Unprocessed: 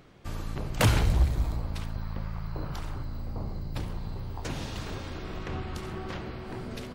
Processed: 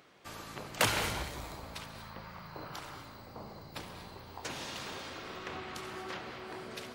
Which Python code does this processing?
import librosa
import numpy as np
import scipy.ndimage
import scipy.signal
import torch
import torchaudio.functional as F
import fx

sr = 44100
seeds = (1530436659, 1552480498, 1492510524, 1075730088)

y = fx.highpass(x, sr, hz=720.0, slope=6)
y = fx.rev_gated(y, sr, seeds[0], gate_ms=260, shape='rising', drr_db=7.5)